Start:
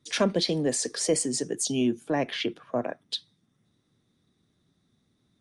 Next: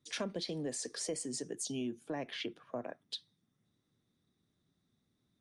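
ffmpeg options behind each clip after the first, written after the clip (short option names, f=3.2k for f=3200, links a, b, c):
-af "acompressor=threshold=-28dB:ratio=2.5,volume=-8.5dB"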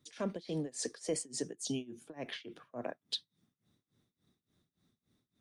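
-af "tremolo=f=3.5:d=0.94,volume=5dB"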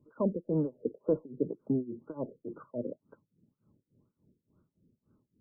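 -af "asuperstop=centerf=730:order=4:qfactor=4.7,afftfilt=real='re*lt(b*sr/1024,540*pow(1600/540,0.5+0.5*sin(2*PI*2*pts/sr)))':imag='im*lt(b*sr/1024,540*pow(1600/540,0.5+0.5*sin(2*PI*2*pts/sr)))':win_size=1024:overlap=0.75,volume=7.5dB"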